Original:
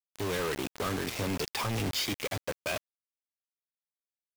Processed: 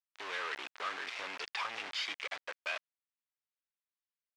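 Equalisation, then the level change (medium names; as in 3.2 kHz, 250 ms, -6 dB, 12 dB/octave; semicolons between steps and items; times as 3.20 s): high-pass 1.5 kHz 12 dB/octave; tape spacing loss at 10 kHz 31 dB; +7.0 dB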